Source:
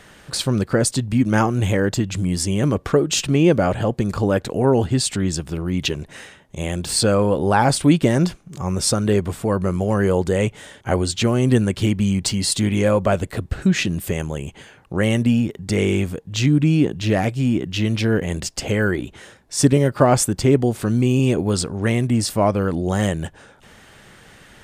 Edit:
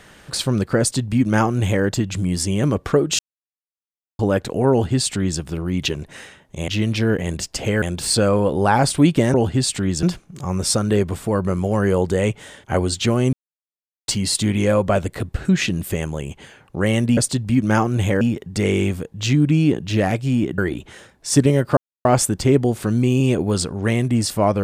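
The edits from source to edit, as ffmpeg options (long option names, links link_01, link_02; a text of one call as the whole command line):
ffmpeg -i in.wav -filter_complex "[0:a]asplit=13[link_01][link_02][link_03][link_04][link_05][link_06][link_07][link_08][link_09][link_10][link_11][link_12][link_13];[link_01]atrim=end=3.19,asetpts=PTS-STARTPTS,afade=type=out:start_time=3.186:duration=0.004:curve=hsin[link_14];[link_02]atrim=start=3.19:end=4.19,asetpts=PTS-STARTPTS,volume=0[link_15];[link_03]atrim=start=4.19:end=6.682,asetpts=PTS-STARTPTS,afade=type=in:duration=0.004:curve=hsin[link_16];[link_04]atrim=start=17.708:end=18.852[link_17];[link_05]atrim=start=6.678:end=8.202[link_18];[link_06]atrim=start=4.708:end=5.402[link_19];[link_07]atrim=start=8.198:end=11.5,asetpts=PTS-STARTPTS,afade=type=out:start_time=3.298:duration=0.004:curve=hsin[link_20];[link_08]atrim=start=11.5:end=12.25,asetpts=PTS-STARTPTS,volume=0[link_21];[link_09]atrim=start=12.25:end=15.342,asetpts=PTS-STARTPTS,afade=type=in:duration=0.004:curve=hsin[link_22];[link_10]atrim=start=0.798:end=1.842[link_23];[link_11]atrim=start=15.338:end=17.712[link_24];[link_12]atrim=start=18.848:end=20.04,asetpts=PTS-STARTPTS,afade=type=out:start_time=1.188:duration=0.004:curve=hsin,apad=pad_dur=0.28[link_25];[link_13]atrim=start=20.04,asetpts=PTS-STARTPTS,afade=type=in:duration=0.004:curve=hsin[link_26];[link_14][link_15][link_16]concat=n=3:v=0:a=1[link_27];[link_27][link_17]acrossfade=duration=0.004:curve1=hsin:curve2=hsin[link_28];[link_28][link_18]acrossfade=duration=0.004:curve1=hsin:curve2=hsin[link_29];[link_29][link_19]acrossfade=duration=0.004:curve1=hsin:curve2=hsin[link_30];[link_20][link_21][link_22]concat=n=3:v=0:a=1[link_31];[link_30][link_31]acrossfade=duration=0.004:curve1=hsin:curve2=hsin[link_32];[link_32][link_23]acrossfade=duration=0.004:curve1=hsin:curve2=hsin[link_33];[link_33][link_24]acrossfade=duration=0.004:curve1=hsin:curve2=hsin[link_34];[link_25][link_26]concat=n=2:v=0:a=1[link_35];[link_34][link_35]acrossfade=duration=0.004:curve1=hsin:curve2=hsin" out.wav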